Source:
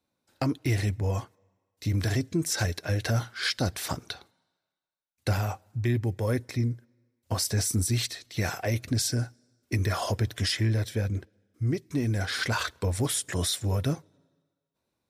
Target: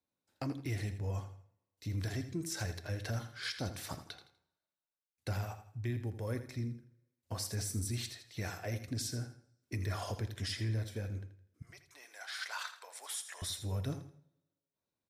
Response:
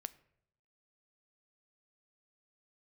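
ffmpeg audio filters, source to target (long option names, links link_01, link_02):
-filter_complex "[0:a]asettb=1/sr,asplit=3[link_01][link_02][link_03];[link_01]atrim=end=11.624[link_04];[link_02]atrim=start=11.62:end=13.42,asetpts=PTS-STARTPTS,afade=type=in:duration=0.004:curve=qsin,afade=type=out:start_time=1.796:duration=0.004:curve=qsin,highpass=frequency=730:width=0.5412,highpass=frequency=730:width=1.3066[link_05];[link_03]atrim=start=13.416[link_06];[link_04][link_05]acrossfade=duration=0.004:curve1=hsin:curve2=qsin[link_07];[link_07][link_06]acrossfade=duration=0.004:curve1=qsin:curve2=hsin,aecho=1:1:82|164|246:0.266|0.0825|0.0256[link_08];[1:a]atrim=start_sample=2205,afade=type=out:start_time=0.36:duration=0.01,atrim=end_sample=16317[link_09];[link_08][link_09]afir=irnorm=-1:irlink=0,volume=-7.5dB"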